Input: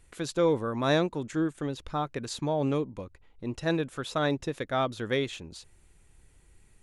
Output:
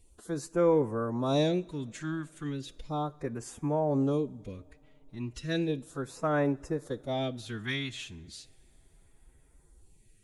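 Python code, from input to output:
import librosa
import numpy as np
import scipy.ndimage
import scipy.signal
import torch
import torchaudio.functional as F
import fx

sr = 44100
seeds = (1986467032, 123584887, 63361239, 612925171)

y = fx.stretch_vocoder(x, sr, factor=1.5)
y = fx.phaser_stages(y, sr, stages=2, low_hz=470.0, high_hz=4100.0, hz=0.35, feedback_pct=0)
y = fx.rev_double_slope(y, sr, seeds[0], early_s=0.55, late_s=4.5, knee_db=-18, drr_db=18.5)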